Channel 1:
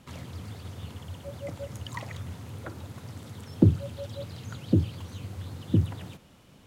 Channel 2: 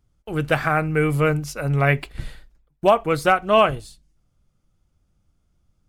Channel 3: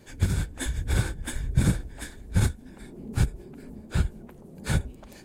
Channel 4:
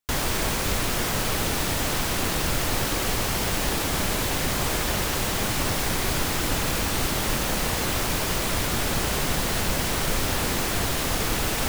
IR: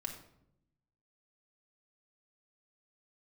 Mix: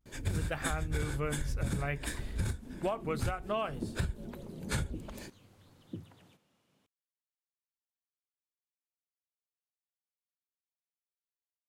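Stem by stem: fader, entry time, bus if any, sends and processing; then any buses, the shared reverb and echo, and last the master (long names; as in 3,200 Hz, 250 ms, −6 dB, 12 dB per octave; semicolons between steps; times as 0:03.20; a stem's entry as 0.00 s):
−16.0 dB, 0.20 s, no send, Bessel high-pass filter 190 Hz, order 2
−10.0 dB, 0.00 s, no send, no processing
+1.5 dB, 0.05 s, no send, notch filter 770 Hz, Q 12; brickwall limiter −17 dBFS, peak gain reduction 7.5 dB
muted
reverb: not used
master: pitch vibrato 0.58 Hz 44 cents; downward compressor 12 to 1, threshold −29 dBFS, peak gain reduction 12.5 dB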